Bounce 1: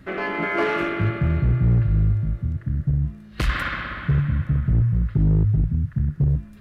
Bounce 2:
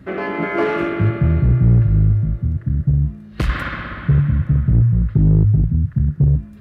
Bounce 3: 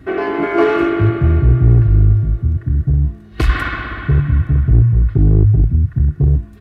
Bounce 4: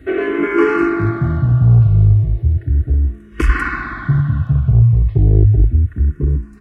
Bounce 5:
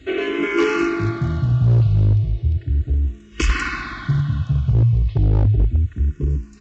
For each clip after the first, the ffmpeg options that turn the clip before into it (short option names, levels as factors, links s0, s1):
-af "highpass=51,tiltshelf=f=970:g=4,volume=1.26"
-af "aecho=1:1:2.7:0.68,volume=1.33"
-filter_complex "[0:a]asplit=2[s0][s1];[s1]afreqshift=-0.35[s2];[s0][s2]amix=inputs=2:normalize=1,volume=1.26"
-af "aexciter=amount=5.7:drive=4.2:freq=2500,aeval=exprs='0.596*(abs(mod(val(0)/0.596+3,4)-2)-1)':c=same,aresample=16000,aresample=44100,volume=0.596"